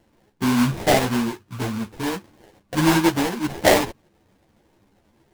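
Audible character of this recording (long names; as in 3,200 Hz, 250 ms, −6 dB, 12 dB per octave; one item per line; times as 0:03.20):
aliases and images of a low sample rate 1,300 Hz, jitter 20%
a shimmering, thickened sound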